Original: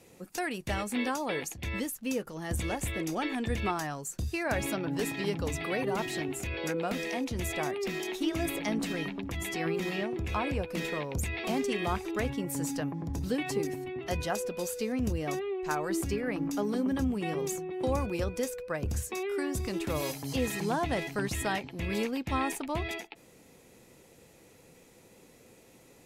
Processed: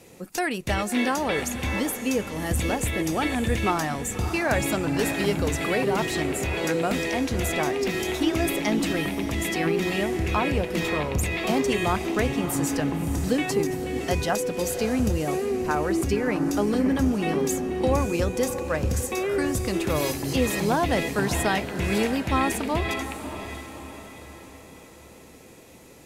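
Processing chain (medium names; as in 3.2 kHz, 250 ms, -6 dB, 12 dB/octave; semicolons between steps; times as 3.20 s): 15.23–16.01 s: low-pass 1.4 kHz -> 3.1 kHz 6 dB/octave; echo that smears into a reverb 599 ms, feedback 47%, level -9.5 dB; trim +7 dB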